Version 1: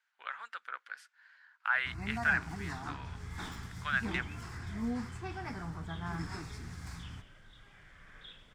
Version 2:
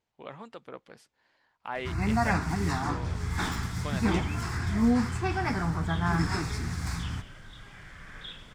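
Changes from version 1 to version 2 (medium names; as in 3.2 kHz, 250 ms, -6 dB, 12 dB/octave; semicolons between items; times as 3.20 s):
speech: remove resonant high-pass 1.5 kHz, resonance Q 5.8; first sound +12.0 dB; second sound +9.0 dB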